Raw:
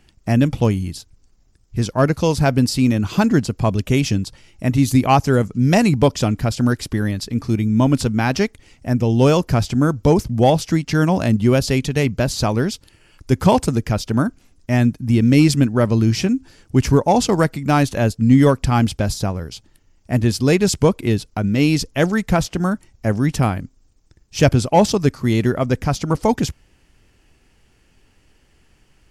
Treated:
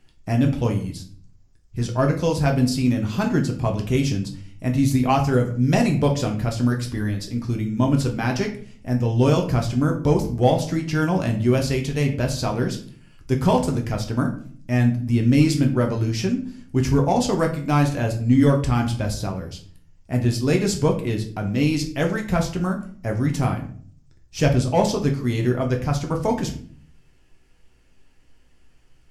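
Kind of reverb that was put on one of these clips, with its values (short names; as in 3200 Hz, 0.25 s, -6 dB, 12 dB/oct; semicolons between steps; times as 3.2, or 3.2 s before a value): shoebox room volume 49 m³, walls mixed, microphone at 0.51 m; gain -7 dB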